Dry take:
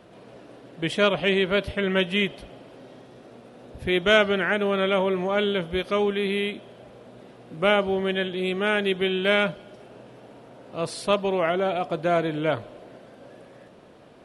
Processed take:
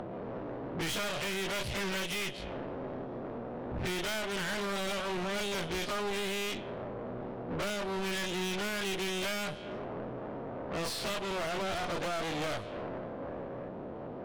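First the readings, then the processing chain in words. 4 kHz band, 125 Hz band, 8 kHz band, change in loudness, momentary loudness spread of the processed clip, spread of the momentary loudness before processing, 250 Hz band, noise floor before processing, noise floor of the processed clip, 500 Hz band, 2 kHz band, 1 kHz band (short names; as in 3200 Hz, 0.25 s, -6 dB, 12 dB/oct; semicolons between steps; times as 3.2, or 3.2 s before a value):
-7.0 dB, -7.5 dB, n/a, -11.5 dB, 8 LU, 10 LU, -9.5 dB, -50 dBFS, -42 dBFS, -12.0 dB, -10.0 dB, -8.0 dB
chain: spectral dilation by 60 ms; low-pass opened by the level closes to 730 Hz, open at -17.5 dBFS; high shelf 3100 Hz +10 dB; compressor 10:1, threshold -30 dBFS, peak gain reduction 21.5 dB; added harmonics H 8 -13 dB, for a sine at -17.5 dBFS; upward compressor, threshold -38 dBFS; soft clip -35 dBFS, distortion -6 dB; gain +4 dB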